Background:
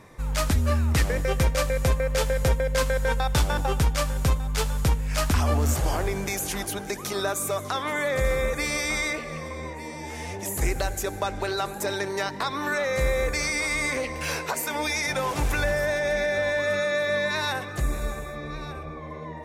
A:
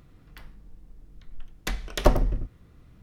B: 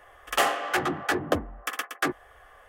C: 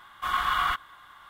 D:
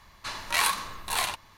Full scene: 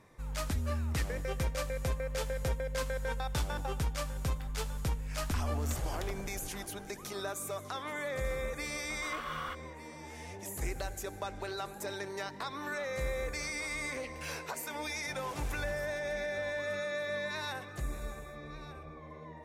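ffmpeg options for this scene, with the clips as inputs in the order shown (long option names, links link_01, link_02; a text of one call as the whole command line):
ffmpeg -i bed.wav -i cue0.wav -i cue1.wav -i cue2.wav -filter_complex "[0:a]volume=-11dB[link_01];[1:a]acompressor=threshold=-35dB:ratio=6:attack=3.2:release=140:knee=1:detection=peak,atrim=end=3.02,asetpts=PTS-STARTPTS,volume=-6dB,afade=type=in:duration=0.004:curve=hsin,afade=type=out:start_time=3.016:duration=0.004:curve=hsin,adelay=4040[link_02];[3:a]atrim=end=1.29,asetpts=PTS-STARTPTS,volume=-14dB,afade=type=in:duration=0.004:curve=hsin,afade=type=out:start_time=1.286:duration=0.004:curve=hsin,adelay=8790[link_03];[link_01][link_02][link_03]amix=inputs=3:normalize=0" out.wav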